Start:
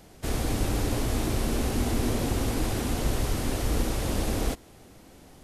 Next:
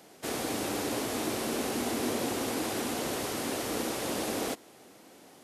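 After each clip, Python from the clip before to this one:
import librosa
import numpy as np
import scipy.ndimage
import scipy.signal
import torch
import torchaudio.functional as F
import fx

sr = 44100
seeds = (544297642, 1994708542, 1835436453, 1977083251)

y = scipy.signal.sosfilt(scipy.signal.butter(2, 270.0, 'highpass', fs=sr, output='sos'), x)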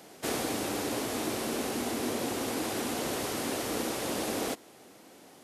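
y = fx.rider(x, sr, range_db=10, speed_s=0.5)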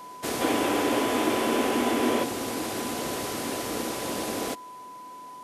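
y = x + 10.0 ** (-42.0 / 20.0) * np.sin(2.0 * np.pi * 1000.0 * np.arange(len(x)) / sr)
y = fx.spec_box(y, sr, start_s=0.41, length_s=1.82, low_hz=230.0, high_hz=3600.0, gain_db=7)
y = y * librosa.db_to_amplitude(1.5)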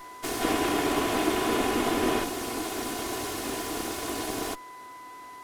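y = fx.lower_of_two(x, sr, delay_ms=2.8)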